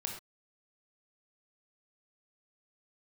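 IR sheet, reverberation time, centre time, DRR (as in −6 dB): non-exponential decay, 27 ms, 1.5 dB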